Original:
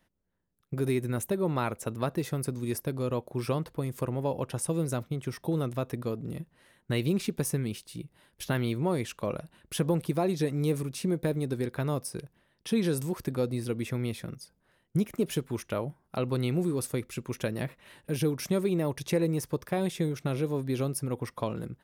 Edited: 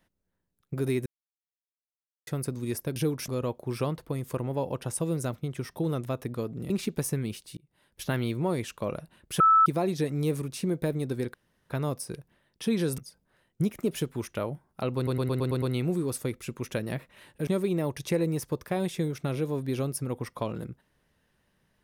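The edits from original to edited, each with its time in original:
1.06–2.27 mute
6.38–7.11 cut
7.98–8.44 fade in linear
9.81–10.07 bleep 1310 Hz -15.5 dBFS
11.75 insert room tone 0.36 s
13.03–14.33 cut
16.31 stutter 0.11 s, 7 plays
18.16–18.48 move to 2.96

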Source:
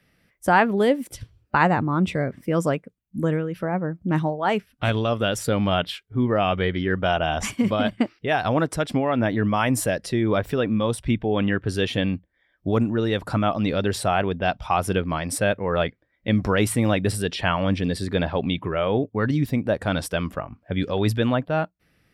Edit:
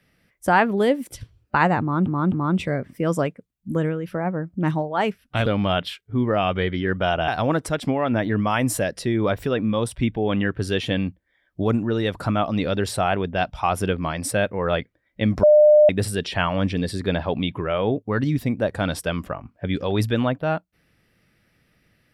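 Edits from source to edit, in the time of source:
1.8–2.06 loop, 3 plays
4.94–5.48 cut
7.3–8.35 cut
16.5–16.96 bleep 602 Hz -9 dBFS

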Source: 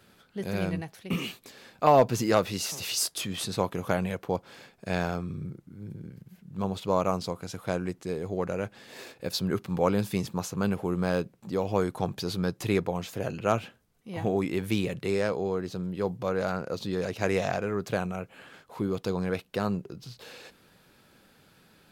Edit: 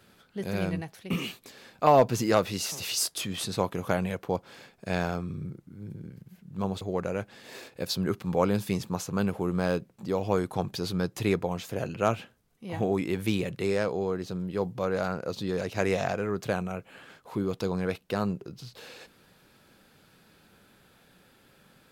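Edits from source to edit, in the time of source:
6.81–8.25 cut

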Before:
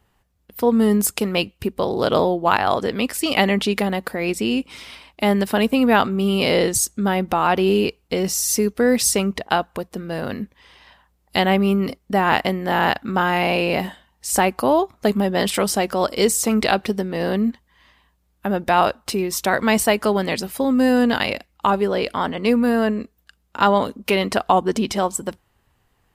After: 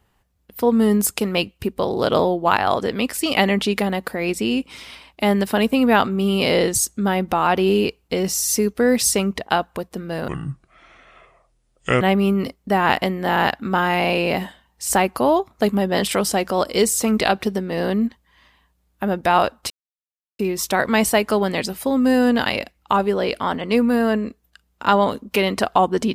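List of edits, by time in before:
10.28–11.44 speed 67%
19.13 insert silence 0.69 s

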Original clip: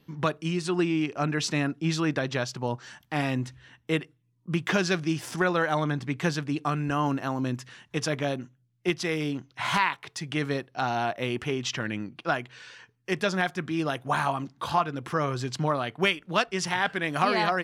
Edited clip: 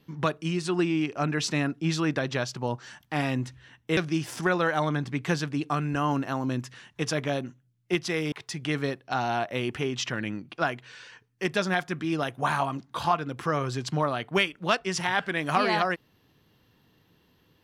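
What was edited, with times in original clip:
3.97–4.92 cut
9.27–9.99 cut

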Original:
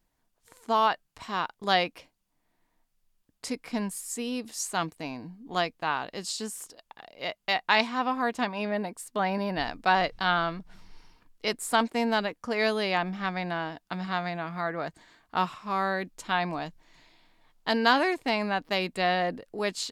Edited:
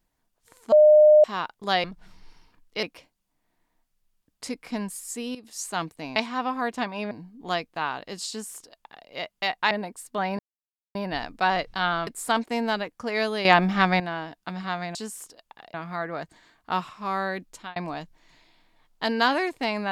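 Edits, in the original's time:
0.72–1.24 bleep 607 Hz -10.5 dBFS
4.36–4.67 fade in, from -13 dB
6.35–7.14 copy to 14.39
7.77–8.72 move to 5.17
9.4 insert silence 0.56 s
10.52–11.51 move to 1.84
12.89–13.44 gain +10 dB
16.15–16.41 fade out

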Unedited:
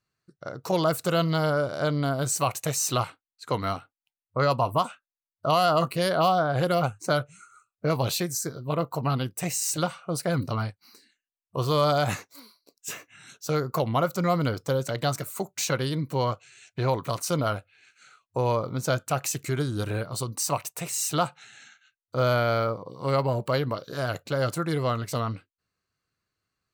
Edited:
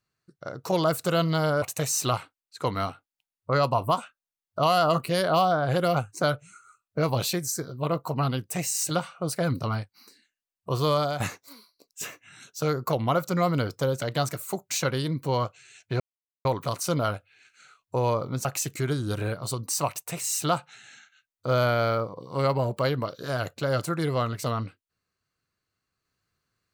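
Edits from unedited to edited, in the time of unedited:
1.62–2.49 cut
11.74–12.07 fade out, to -9 dB
16.87 insert silence 0.45 s
18.87–19.14 cut

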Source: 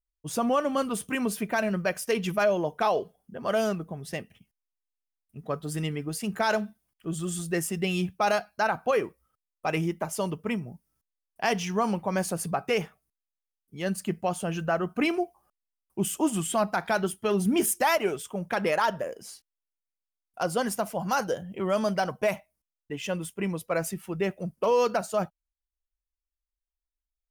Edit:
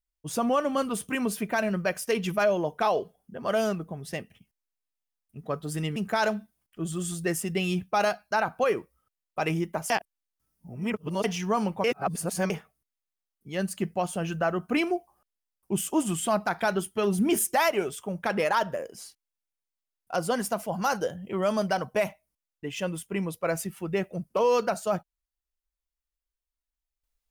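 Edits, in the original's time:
5.96–6.23 cut
10.17–11.51 reverse
12.11–12.77 reverse

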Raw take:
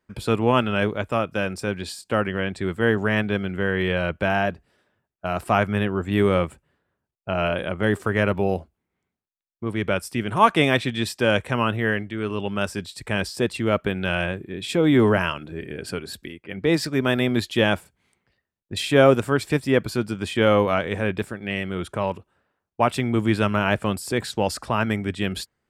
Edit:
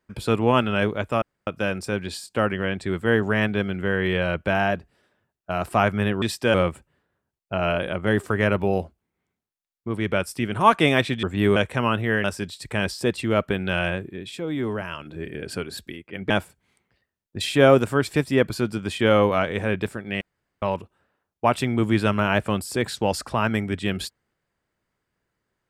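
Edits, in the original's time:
1.22 insert room tone 0.25 s
5.97–6.3 swap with 10.99–11.31
11.99–12.6 cut
14.44–15.54 dip -10 dB, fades 0.29 s
16.66–17.66 cut
21.57–21.98 room tone

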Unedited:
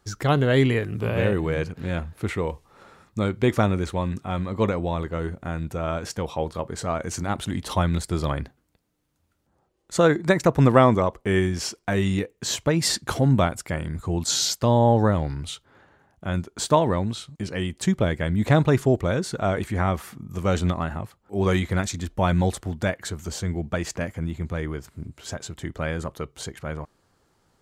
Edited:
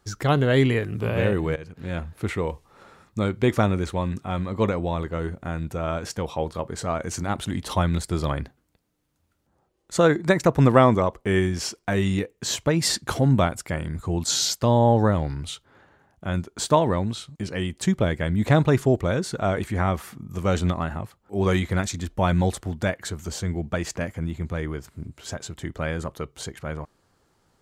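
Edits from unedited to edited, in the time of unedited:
1.56–2.27 fade in equal-power, from -17.5 dB

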